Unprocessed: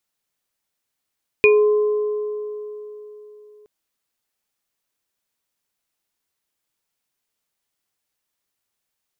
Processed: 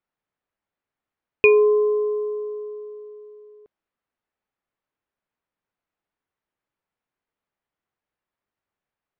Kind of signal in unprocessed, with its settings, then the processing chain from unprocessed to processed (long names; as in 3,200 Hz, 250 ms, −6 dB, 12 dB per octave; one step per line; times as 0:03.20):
inharmonic partials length 2.22 s, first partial 421 Hz, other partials 1,040/2,450 Hz, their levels −17.5/1 dB, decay 3.65 s, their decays 2.83/0.22 s, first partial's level −9.5 dB
low-pass that shuts in the quiet parts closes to 1,800 Hz, open at −22 dBFS